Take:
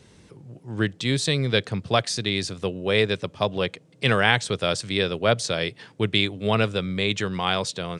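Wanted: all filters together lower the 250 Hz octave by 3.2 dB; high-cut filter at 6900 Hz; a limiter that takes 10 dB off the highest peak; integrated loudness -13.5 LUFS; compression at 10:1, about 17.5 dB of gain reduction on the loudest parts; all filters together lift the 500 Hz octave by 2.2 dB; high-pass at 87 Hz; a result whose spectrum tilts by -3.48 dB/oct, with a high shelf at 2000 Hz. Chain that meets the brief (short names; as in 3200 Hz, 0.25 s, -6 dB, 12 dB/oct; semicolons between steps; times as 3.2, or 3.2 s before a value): HPF 87 Hz; LPF 6900 Hz; bell 250 Hz -5.5 dB; bell 500 Hz +3.5 dB; high shelf 2000 Hz +7 dB; compressor 10:1, threshold -30 dBFS; gain +22.5 dB; limiter 0 dBFS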